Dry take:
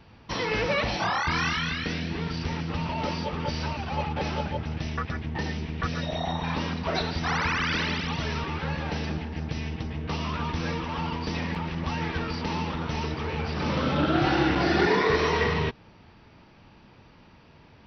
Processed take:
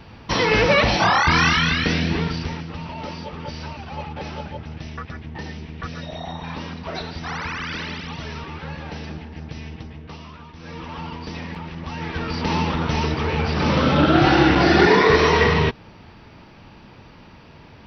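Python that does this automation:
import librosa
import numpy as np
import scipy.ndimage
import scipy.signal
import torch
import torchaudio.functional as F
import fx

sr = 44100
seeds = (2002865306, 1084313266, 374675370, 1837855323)

y = fx.gain(x, sr, db=fx.line((2.14, 9.5), (2.71, -2.5), (9.78, -2.5), (10.54, -13.0), (10.82, -2.0), (11.88, -2.0), (12.53, 8.0)))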